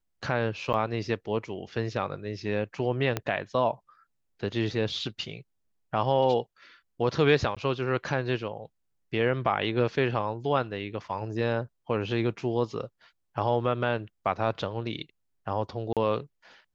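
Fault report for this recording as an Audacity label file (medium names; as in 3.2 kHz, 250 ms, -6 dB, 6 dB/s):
0.730000	0.740000	dropout 9.1 ms
3.170000	3.170000	pop -13 dBFS
7.550000	7.570000	dropout 16 ms
15.930000	15.970000	dropout 37 ms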